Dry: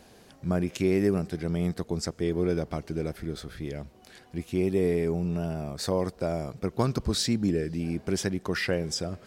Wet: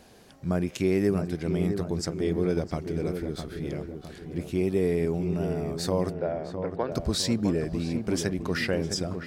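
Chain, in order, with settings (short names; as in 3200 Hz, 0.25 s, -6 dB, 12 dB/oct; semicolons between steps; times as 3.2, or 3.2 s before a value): 6.13–6.92 speaker cabinet 410–3000 Hz, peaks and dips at 510 Hz +4 dB, 1200 Hz -7 dB, 1700 Hz +5 dB, 2400 Hz -7 dB; darkening echo 0.658 s, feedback 51%, low-pass 1500 Hz, level -7 dB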